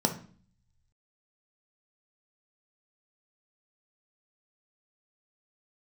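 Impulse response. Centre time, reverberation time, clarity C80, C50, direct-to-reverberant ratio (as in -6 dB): 11 ms, 0.45 s, 16.5 dB, 11.0 dB, 4.0 dB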